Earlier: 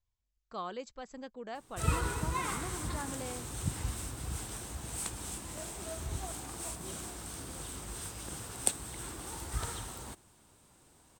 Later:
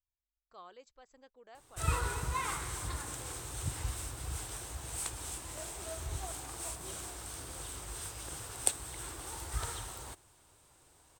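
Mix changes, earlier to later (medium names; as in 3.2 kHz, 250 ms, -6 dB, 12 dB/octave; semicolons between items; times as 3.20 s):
speech -12.0 dB; master: add peaking EQ 210 Hz -12 dB 0.84 oct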